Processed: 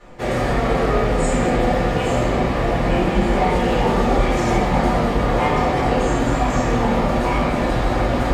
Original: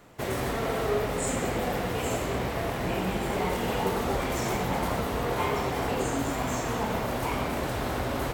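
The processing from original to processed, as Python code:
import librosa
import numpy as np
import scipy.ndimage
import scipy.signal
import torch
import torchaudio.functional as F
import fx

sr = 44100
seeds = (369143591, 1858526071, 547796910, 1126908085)

y = fx.air_absorb(x, sr, metres=64.0)
y = fx.room_shoebox(y, sr, seeds[0], volume_m3=140.0, walls='furnished', distance_m=4.2)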